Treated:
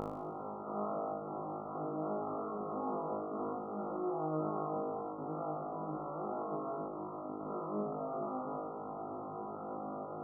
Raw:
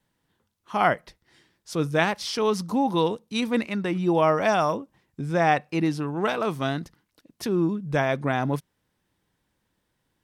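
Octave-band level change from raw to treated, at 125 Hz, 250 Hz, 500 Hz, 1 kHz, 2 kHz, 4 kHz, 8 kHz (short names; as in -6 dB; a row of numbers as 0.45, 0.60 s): -17.5 dB, -14.0 dB, -12.0 dB, -11.5 dB, under -35 dB, under -40 dB, under -35 dB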